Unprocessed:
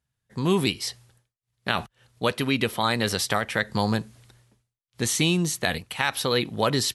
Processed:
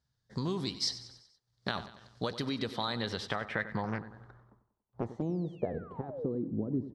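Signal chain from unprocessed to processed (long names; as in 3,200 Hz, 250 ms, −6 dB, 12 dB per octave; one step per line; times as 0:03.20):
parametric band 2,600 Hz −13 dB 0.65 octaves
downward compressor 6 to 1, threshold −32 dBFS, peak gain reduction 14 dB
0:05.21–0:06.27: sound drawn into the spectrogram fall 410–7,400 Hz −37 dBFS
repeating echo 94 ms, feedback 52%, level −14 dB
low-pass filter sweep 4,900 Hz → 290 Hz, 0:02.57–0:06.44
0:03.83–0:05.22: highs frequency-modulated by the lows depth 0.46 ms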